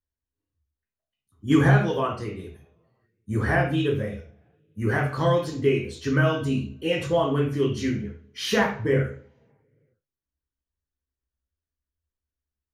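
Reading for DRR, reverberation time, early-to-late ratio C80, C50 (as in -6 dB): -1.0 dB, 0.45 s, 11.5 dB, 7.0 dB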